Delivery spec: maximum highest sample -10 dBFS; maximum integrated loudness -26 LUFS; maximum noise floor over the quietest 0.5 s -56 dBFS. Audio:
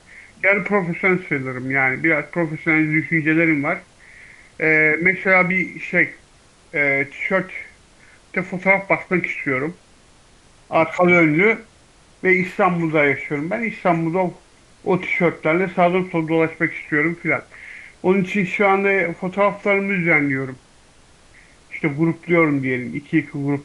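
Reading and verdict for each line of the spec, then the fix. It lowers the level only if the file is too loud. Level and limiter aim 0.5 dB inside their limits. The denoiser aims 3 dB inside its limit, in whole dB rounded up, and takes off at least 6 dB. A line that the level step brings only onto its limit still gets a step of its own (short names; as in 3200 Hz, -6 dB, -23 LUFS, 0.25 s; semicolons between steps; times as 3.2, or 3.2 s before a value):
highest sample -3.0 dBFS: fail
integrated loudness -18.5 LUFS: fail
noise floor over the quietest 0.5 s -51 dBFS: fail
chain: gain -8 dB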